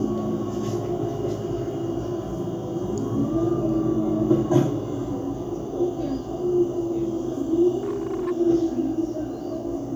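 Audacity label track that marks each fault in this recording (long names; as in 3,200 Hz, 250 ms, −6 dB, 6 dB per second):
7.830000	8.320000	clipping −23 dBFS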